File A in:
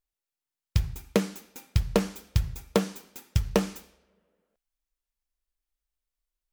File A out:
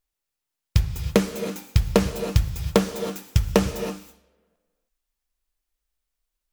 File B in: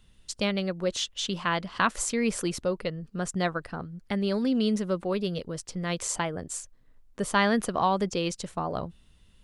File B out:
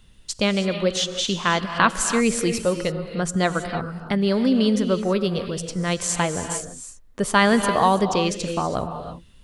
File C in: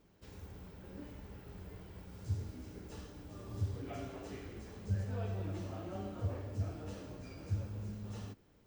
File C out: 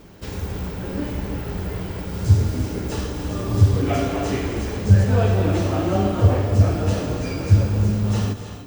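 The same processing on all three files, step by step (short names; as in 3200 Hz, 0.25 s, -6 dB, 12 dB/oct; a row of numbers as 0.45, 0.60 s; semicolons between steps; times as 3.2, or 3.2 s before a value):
non-linear reverb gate 0.35 s rising, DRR 8 dB; normalise peaks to -2 dBFS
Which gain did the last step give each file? +5.0, +6.5, +22.0 dB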